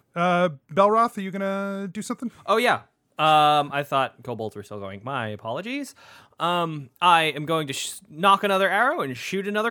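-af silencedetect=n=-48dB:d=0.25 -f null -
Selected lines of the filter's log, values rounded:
silence_start: 2.85
silence_end: 3.18 | silence_duration: 0.33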